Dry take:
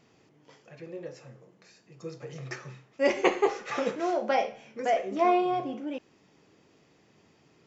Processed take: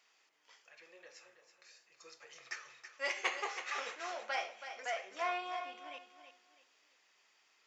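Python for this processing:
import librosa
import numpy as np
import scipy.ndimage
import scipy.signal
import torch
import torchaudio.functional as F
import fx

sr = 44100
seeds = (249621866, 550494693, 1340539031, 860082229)

p1 = fx.diode_clip(x, sr, knee_db=-14.5)
p2 = scipy.signal.sosfilt(scipy.signal.butter(2, 1300.0, 'highpass', fs=sr, output='sos'), p1)
p3 = p2 + fx.echo_feedback(p2, sr, ms=326, feedback_pct=31, wet_db=-10.0, dry=0)
y = F.gain(torch.from_numpy(p3), -2.0).numpy()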